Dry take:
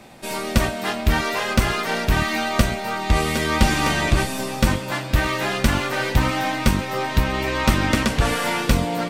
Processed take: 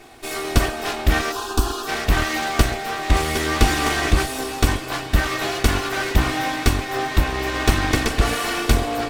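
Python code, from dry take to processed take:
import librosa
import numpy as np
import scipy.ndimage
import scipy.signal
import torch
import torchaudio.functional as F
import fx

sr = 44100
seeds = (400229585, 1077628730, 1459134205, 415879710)

y = fx.lower_of_two(x, sr, delay_ms=2.7)
y = fx.fixed_phaser(y, sr, hz=560.0, stages=6, at=(1.31, 1.87), fade=0.02)
y = y * librosa.db_to_amplitude(1.5)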